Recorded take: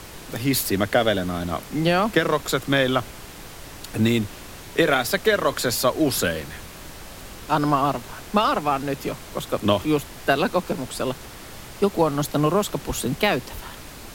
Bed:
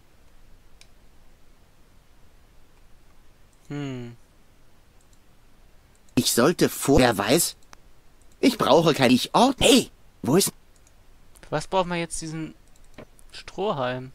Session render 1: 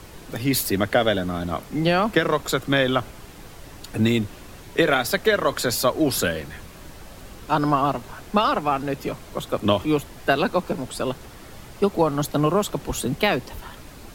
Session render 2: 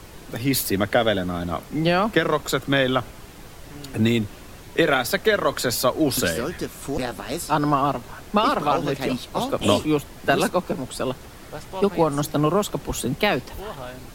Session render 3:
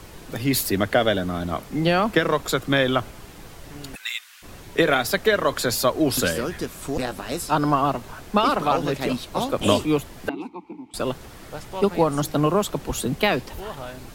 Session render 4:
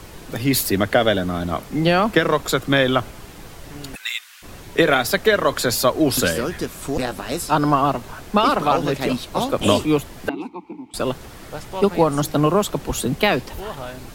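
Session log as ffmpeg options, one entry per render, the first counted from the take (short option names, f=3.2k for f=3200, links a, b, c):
-af "afftdn=nr=6:nf=-40"
-filter_complex "[1:a]volume=-9.5dB[a];[0:a][a]amix=inputs=2:normalize=0"
-filter_complex "[0:a]asplit=3[a][b][c];[a]afade=t=out:st=3.94:d=0.02[d];[b]highpass=f=1.4k:w=0.5412,highpass=f=1.4k:w=1.3066,afade=t=in:st=3.94:d=0.02,afade=t=out:st=4.42:d=0.02[e];[c]afade=t=in:st=4.42:d=0.02[f];[d][e][f]amix=inputs=3:normalize=0,asettb=1/sr,asplit=3[g][h][i];[g]atrim=end=10.294[j];[h]atrim=start=10.29:end=10.94,asetpts=PTS-STARTPTS,afade=t=in:d=0.004:c=qsin,afade=t=out:st=0.646:d=0.004:c=qsin,asplit=3[k][l][m];[k]bandpass=f=300:t=q:w=8,volume=0dB[n];[l]bandpass=f=870:t=q:w=8,volume=-6dB[o];[m]bandpass=f=2.24k:t=q:w=8,volume=-9dB[p];[n][o][p]amix=inputs=3:normalize=0[q];[i]atrim=start=10.936[r];[j][q]acrossfade=d=0.004:c1=hsin:c2=qsin[s];[s][r]acrossfade=d=0.004:c1=qsin:c2=hsin"
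-af "volume=3dB,alimiter=limit=-3dB:level=0:latency=1"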